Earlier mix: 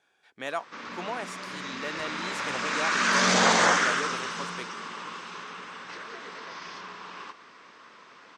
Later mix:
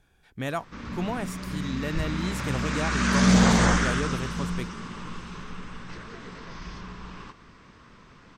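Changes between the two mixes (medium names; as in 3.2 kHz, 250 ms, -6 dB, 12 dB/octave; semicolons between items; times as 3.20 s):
background -4.0 dB; master: remove band-pass 480–7500 Hz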